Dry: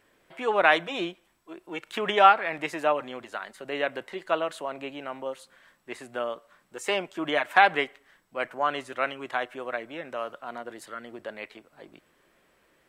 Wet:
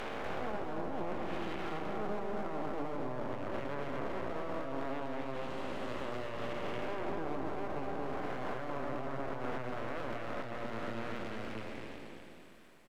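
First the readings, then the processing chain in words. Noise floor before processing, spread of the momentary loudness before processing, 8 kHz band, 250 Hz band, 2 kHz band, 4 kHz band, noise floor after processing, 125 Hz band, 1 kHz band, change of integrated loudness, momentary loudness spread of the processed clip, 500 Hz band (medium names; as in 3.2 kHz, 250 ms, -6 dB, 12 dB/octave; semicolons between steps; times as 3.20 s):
-66 dBFS, 19 LU, under -10 dB, -2.5 dB, -16.0 dB, -15.5 dB, -50 dBFS, +4.5 dB, -14.0 dB, -12.5 dB, 3 LU, -9.0 dB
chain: spectral blur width 898 ms; hum notches 60/120/180/240/300/360/420 Hz; low-pass that closes with the level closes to 540 Hz, closed at -31.5 dBFS; peaking EQ 220 Hz +7.5 dB 1.2 oct; peak limiter -34.5 dBFS, peak gain reduction 10 dB; half-wave rectifier; delay 244 ms -4 dB; trim +7 dB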